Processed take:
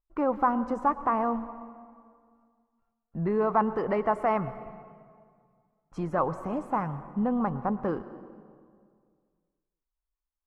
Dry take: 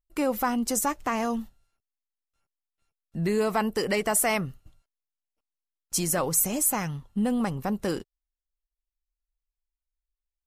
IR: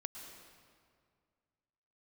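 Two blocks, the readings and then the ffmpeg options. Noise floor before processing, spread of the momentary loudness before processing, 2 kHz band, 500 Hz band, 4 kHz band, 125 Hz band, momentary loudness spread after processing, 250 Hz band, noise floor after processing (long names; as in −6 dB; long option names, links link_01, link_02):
below −85 dBFS, 9 LU, −7.0 dB, 0.0 dB, below −20 dB, −2.0 dB, 18 LU, −1.5 dB, below −85 dBFS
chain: -filter_complex "[0:a]lowpass=frequency=1100:width_type=q:width=2.3,asplit=2[link_01][link_02];[1:a]atrim=start_sample=2205[link_03];[link_02][link_03]afir=irnorm=-1:irlink=0,volume=-3dB[link_04];[link_01][link_04]amix=inputs=2:normalize=0,volume=-5.5dB"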